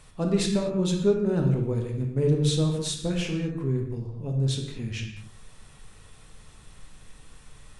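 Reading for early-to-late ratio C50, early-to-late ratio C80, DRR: 4.5 dB, 6.5 dB, 1.0 dB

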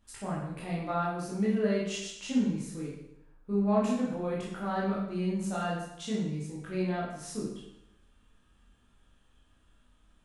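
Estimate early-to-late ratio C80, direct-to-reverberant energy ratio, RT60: 5.0 dB, -6.5 dB, 0.80 s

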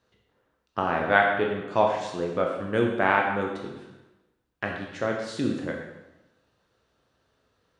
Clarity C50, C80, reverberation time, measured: 3.5 dB, 5.5 dB, 1.0 s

